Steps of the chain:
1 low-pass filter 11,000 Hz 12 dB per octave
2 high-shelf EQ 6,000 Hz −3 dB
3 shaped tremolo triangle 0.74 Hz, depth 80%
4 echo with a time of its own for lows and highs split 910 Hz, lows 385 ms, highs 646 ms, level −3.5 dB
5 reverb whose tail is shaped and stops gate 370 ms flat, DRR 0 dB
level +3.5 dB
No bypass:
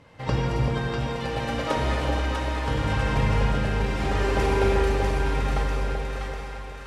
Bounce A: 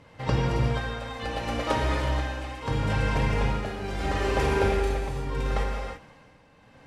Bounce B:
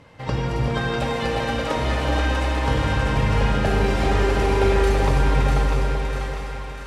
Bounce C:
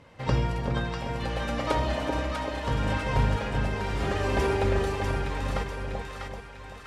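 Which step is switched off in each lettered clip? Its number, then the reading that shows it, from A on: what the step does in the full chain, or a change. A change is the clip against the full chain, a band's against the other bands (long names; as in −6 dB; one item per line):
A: 4, change in momentary loudness spread +1 LU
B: 3, change in integrated loudness +4.0 LU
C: 5, echo-to-direct ratio 3.5 dB to −2.0 dB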